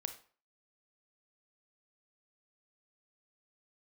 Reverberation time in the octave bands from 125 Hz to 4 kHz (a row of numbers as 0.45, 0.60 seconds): 0.40, 0.40, 0.45, 0.45, 0.40, 0.35 seconds